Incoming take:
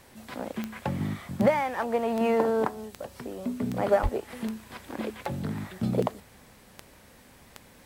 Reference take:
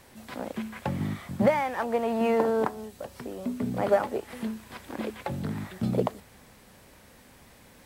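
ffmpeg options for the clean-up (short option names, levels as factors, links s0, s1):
-filter_complex "[0:a]adeclick=t=4,asplit=3[s0][s1][s2];[s0]afade=t=out:st=4.02:d=0.02[s3];[s1]highpass=f=140:w=0.5412,highpass=f=140:w=1.3066,afade=t=in:st=4.02:d=0.02,afade=t=out:st=4.14:d=0.02[s4];[s2]afade=t=in:st=4.14:d=0.02[s5];[s3][s4][s5]amix=inputs=3:normalize=0"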